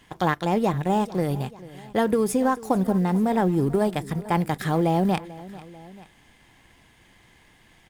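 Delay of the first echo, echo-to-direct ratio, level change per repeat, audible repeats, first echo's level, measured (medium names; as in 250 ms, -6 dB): 441 ms, -17.0 dB, -4.5 dB, 2, -18.5 dB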